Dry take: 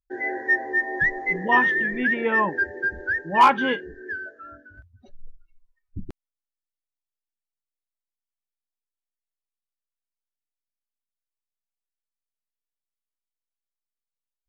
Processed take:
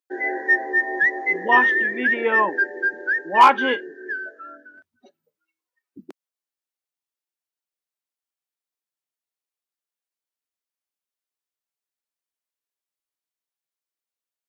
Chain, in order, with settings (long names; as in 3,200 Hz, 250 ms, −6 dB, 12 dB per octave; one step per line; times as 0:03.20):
high-pass filter 270 Hz 24 dB per octave
level +3 dB